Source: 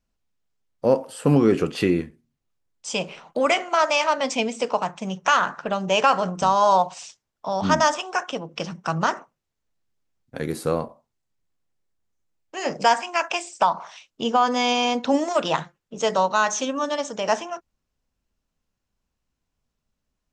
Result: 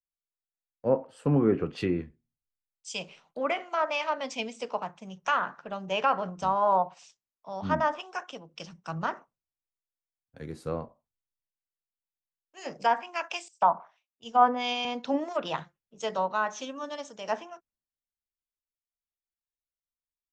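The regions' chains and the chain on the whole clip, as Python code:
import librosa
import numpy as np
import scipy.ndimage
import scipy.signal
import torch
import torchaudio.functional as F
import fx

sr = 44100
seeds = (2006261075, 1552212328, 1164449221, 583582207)

y = fx.chain(x, sr, fx.peak_eq(hz=700.0, db=3.5, octaves=0.3),
    fx.band_widen(depth_pct=100), at=(13.48, 14.85))
y = fx.env_lowpass_down(y, sr, base_hz=2100.0, full_db=-14.5)
y = fx.high_shelf(y, sr, hz=10000.0, db=-4.5)
y = fx.band_widen(y, sr, depth_pct=70)
y = y * librosa.db_to_amplitude(-8.5)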